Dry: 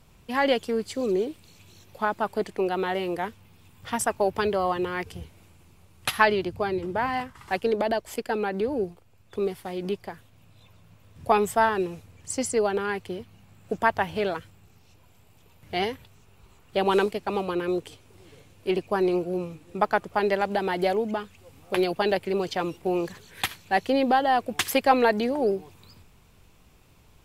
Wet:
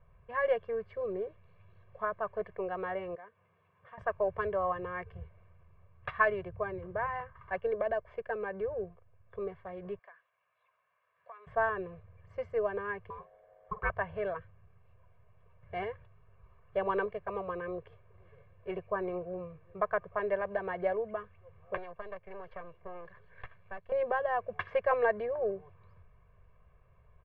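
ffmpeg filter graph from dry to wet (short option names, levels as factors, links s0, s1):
-filter_complex "[0:a]asettb=1/sr,asplit=3[s0][s1][s2];[s0]atrim=end=3.154[s3];[s1]atrim=start=3.15:end=3.98,asetpts=PTS-STARTPTS,afade=t=in:d=0.004:c=qsin,afade=t=out:st=0.826:d=0.004:c=qsin,highpass=220,acompressor=threshold=0.00355:ratio=2:attack=3.2:release=140:knee=1:detection=peak[s4];[s2]atrim=start=3.976[s5];[s3][s4]acrossfade=d=0.004:c1=hsin:c2=qsin[s6];[s6][s5]acrossfade=d=0.004:c1=qsin:c2=hsin,asettb=1/sr,asplit=3[s7][s8][s9];[s7]atrim=end=9.994[s10];[s8]atrim=start=9.99:end=11.47,asetpts=PTS-STARTPTS,afade=t=in:d=0.004:c=qsin,afade=t=out:st=1.476:d=0.004:c=qsin,highpass=1100,acompressor=threshold=0.00891:ratio=4:attack=3.2:release=140:knee=1:detection=peak[s11];[s9]atrim=start=11.466[s12];[s10][s11]acrossfade=d=0.004:c1=hsin:c2=qsin[s13];[s13][s12]acrossfade=d=0.004:c1=qsin:c2=hsin,asettb=1/sr,asplit=3[s14][s15][s16];[s14]atrim=end=13.104[s17];[s15]atrim=start=13.1:end=13.9,asetpts=PTS-STARTPTS,afade=t=in:d=0.004:c=qsin,afade=t=out:st=0.796:d=0.004:c=qsin,aeval=exprs='val(0)*sin(2*PI*630*n/s)':c=same,asplit=2[s18][s19];[s19]adelay=49,volume=0.2[s20];[s18][s20]amix=inputs=2:normalize=0,atrim=end_sample=35280[s21];[s16]atrim=start=13.896[s22];[s17][s21]acrossfade=d=0.004:c1=hsin:c2=qsin[s23];[s23][s22]acrossfade=d=0.004:c1=qsin:c2=hsin,asettb=1/sr,asplit=3[s24][s25][s26];[s24]atrim=end=21.774[s27];[s25]atrim=start=21.77:end=23.92,asetpts=PTS-STARTPTS,afade=t=in:d=0.004:c=qsin,afade=t=out:st=2.146:d=0.004:c=qsin,aeval=exprs='if(lt(val(0),0),0.251*val(0),val(0))':c=same,acrossover=split=540|4200[s28][s29][s30];[s28]acompressor=threshold=0.0126:ratio=4[s31];[s29]acompressor=threshold=0.0141:ratio=4[s32];[s30]acompressor=threshold=0.00355:ratio=4[s33];[s31][s32][s33]amix=inputs=3:normalize=0[s34];[s26]atrim=start=23.916[s35];[s27][s34]acrossfade=d=0.004:c1=hsin:c2=qsin[s36];[s36][s35]acrossfade=d=0.004:c1=qsin:c2=hsin,lowpass=f=1900:w=0.5412,lowpass=f=1900:w=1.3066,equalizer=f=270:t=o:w=0.66:g=-14,aecho=1:1:1.8:0.86,volume=0.398"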